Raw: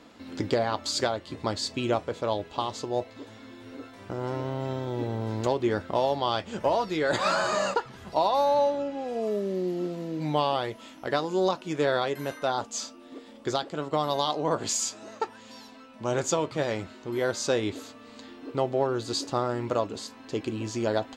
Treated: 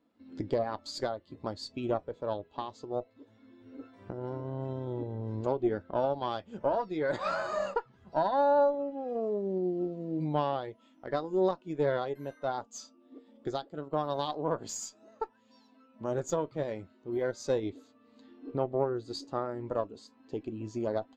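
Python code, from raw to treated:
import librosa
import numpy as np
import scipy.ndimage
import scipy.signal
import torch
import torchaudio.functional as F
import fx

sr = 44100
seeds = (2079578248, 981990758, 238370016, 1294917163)

y = fx.recorder_agc(x, sr, target_db=-20.0, rise_db_per_s=6.9, max_gain_db=30)
y = fx.tube_stage(y, sr, drive_db=17.0, bias=0.75)
y = fx.spectral_expand(y, sr, expansion=1.5)
y = y * librosa.db_to_amplitude(-1.5)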